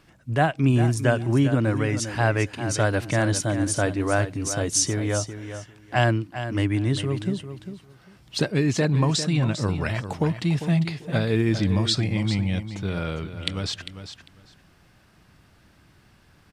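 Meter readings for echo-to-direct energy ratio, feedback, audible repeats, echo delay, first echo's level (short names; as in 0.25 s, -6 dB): -10.5 dB, 17%, 2, 0.399 s, -10.5 dB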